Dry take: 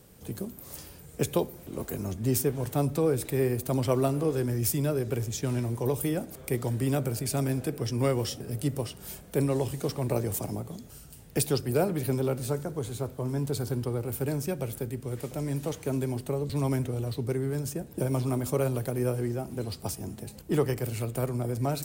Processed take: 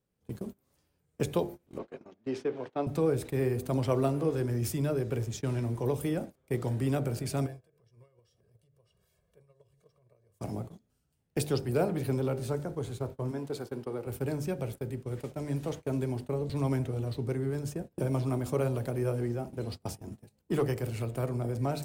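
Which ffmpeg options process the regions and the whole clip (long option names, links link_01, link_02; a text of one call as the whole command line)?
ffmpeg -i in.wav -filter_complex "[0:a]asettb=1/sr,asplit=3[link_01][link_02][link_03];[link_01]atrim=end=1.784[link_04];[link_02]atrim=start=1.78:end=2.87,asetpts=PTS-STARTPTS,afade=type=in:duration=0.004:curve=qsin,afade=type=out:start_time=1.086:duration=0.004:curve=qsin,lowpass=6100,acrossover=split=240 4700:gain=0.0708 1 0.158[link_05][link_06][link_07];[link_05][link_06][link_07]amix=inputs=3:normalize=0[link_08];[link_03]atrim=start=2.866[link_09];[link_04][link_08]acrossfade=duration=0.004:curve1=hsin:curve2=qsin[link_10];[link_10][link_09]acrossfade=duration=0.004:curve1=qsin:curve2=hsin,asettb=1/sr,asplit=3[link_11][link_12][link_13];[link_11]atrim=end=7.464[link_14];[link_12]atrim=start=7.46:end=10.41,asetpts=PTS-STARTPTS,afade=type=in:duration=0.004:curve=qsin,afade=type=out:start_time=2.946:duration=0.004:curve=qsin,aecho=1:1:1.8:1,atrim=end_sample=130095,acompressor=threshold=-38dB:ratio=8:attack=3.2:release=140:knee=1:detection=peak[link_15];[link_13]atrim=start=10.406[link_16];[link_14][link_15]acrossfade=duration=0.004:curve1=hsin:curve2=qsin[link_17];[link_17][link_16]acrossfade=duration=0.004:curve1=qsin:curve2=hsin,asettb=1/sr,asplit=3[link_18][link_19][link_20];[link_18]atrim=end=13.314[link_21];[link_19]atrim=start=13.31:end=14.07,asetpts=PTS-STARTPTS,afade=type=in:duration=0.004:curve=qsin,afade=type=out:start_time=0.756:duration=0.004:curve=qsin,highpass=190,bass=frequency=250:gain=-4,treble=frequency=4000:gain=-3[link_22];[link_20]atrim=start=14.066[link_23];[link_21][link_22]acrossfade=duration=0.004:curve1=hsin:curve2=qsin[link_24];[link_24][link_23]acrossfade=duration=0.004:curve1=qsin:curve2=hsin,asettb=1/sr,asplit=3[link_25][link_26][link_27];[link_25]atrim=end=20.134[link_28];[link_26]atrim=start=20.13:end=20.82,asetpts=PTS-STARTPTS,afade=type=in:duration=0.004:curve=qsin,afade=type=out:start_time=0.686:duration=0.004:curve=qsin,highpass=42,highshelf=frequency=7700:gain=5,asoftclip=type=hard:threshold=-18dB[link_29];[link_27]atrim=start=20.816[link_30];[link_28][link_29]acrossfade=duration=0.004:curve1=hsin:curve2=qsin[link_31];[link_31][link_30]acrossfade=duration=0.004:curve1=qsin:curve2=hsin,lowpass=frequency=3900:poles=1,bandreject=frequency=49.59:width_type=h:width=4,bandreject=frequency=99.18:width_type=h:width=4,bandreject=frequency=148.77:width_type=h:width=4,bandreject=frequency=198.36:width_type=h:width=4,bandreject=frequency=247.95:width_type=h:width=4,bandreject=frequency=297.54:width_type=h:width=4,bandreject=frequency=347.13:width_type=h:width=4,bandreject=frequency=396.72:width_type=h:width=4,bandreject=frequency=446.31:width_type=h:width=4,bandreject=frequency=495.9:width_type=h:width=4,bandreject=frequency=545.49:width_type=h:width=4,bandreject=frequency=595.08:width_type=h:width=4,bandreject=frequency=644.67:width_type=h:width=4,bandreject=frequency=694.26:width_type=h:width=4,bandreject=frequency=743.85:width_type=h:width=4,bandreject=frequency=793.44:width_type=h:width=4,bandreject=frequency=843.03:width_type=h:width=4,bandreject=frequency=892.62:width_type=h:width=4,bandreject=frequency=942.21:width_type=h:width=4,agate=range=-24dB:threshold=-37dB:ratio=16:detection=peak,volume=-1.5dB" out.wav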